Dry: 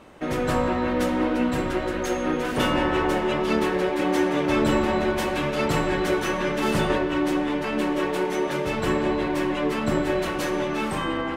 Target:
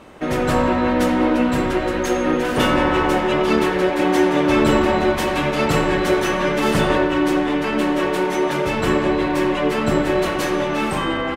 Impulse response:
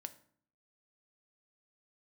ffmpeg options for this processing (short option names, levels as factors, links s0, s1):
-filter_complex "[0:a]asplit=2[s0][s1];[s1]adelay=90,highpass=300,lowpass=3400,asoftclip=type=hard:threshold=0.126,volume=0.447[s2];[s0][s2]amix=inputs=2:normalize=0,volume=1.78" -ar 48000 -c:a libopus -b:a 256k